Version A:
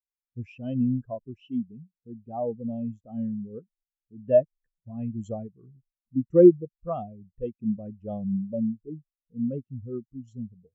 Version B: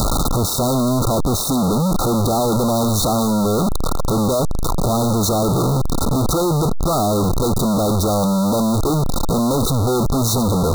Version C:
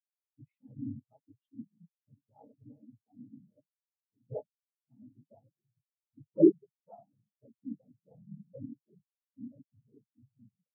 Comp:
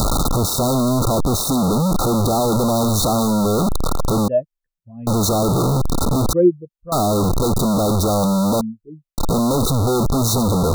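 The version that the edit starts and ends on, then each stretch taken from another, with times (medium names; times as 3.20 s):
B
4.28–5.07 s: from A
6.33–6.92 s: from A
8.61–9.18 s: from A
not used: C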